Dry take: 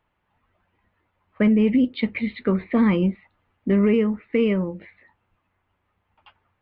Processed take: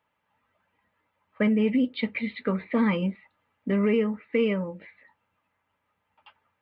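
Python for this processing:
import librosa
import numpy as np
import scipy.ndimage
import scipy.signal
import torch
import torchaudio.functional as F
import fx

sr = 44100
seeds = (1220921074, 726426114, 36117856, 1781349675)

y = fx.highpass(x, sr, hz=170.0, slope=6)
y = fx.low_shelf(y, sr, hz=350.0, db=-4.5)
y = fx.notch_comb(y, sr, f0_hz=360.0)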